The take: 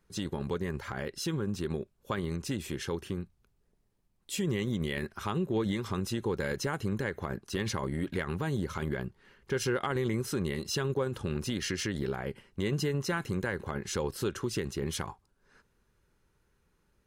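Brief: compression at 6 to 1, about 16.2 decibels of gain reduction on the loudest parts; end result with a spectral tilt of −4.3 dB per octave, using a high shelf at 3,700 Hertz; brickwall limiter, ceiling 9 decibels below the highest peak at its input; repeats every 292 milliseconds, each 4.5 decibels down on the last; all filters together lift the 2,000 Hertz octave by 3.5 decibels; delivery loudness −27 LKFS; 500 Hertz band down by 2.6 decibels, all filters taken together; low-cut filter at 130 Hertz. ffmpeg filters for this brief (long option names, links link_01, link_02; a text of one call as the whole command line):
ffmpeg -i in.wav -af "highpass=130,equalizer=frequency=500:width_type=o:gain=-3.5,equalizer=frequency=2000:width_type=o:gain=5.5,highshelf=frequency=3700:gain=-4,acompressor=threshold=-46dB:ratio=6,alimiter=level_in=15dB:limit=-24dB:level=0:latency=1,volume=-15dB,aecho=1:1:292|584|876|1168|1460|1752|2044|2336|2628:0.596|0.357|0.214|0.129|0.0772|0.0463|0.0278|0.0167|0.01,volume=22dB" out.wav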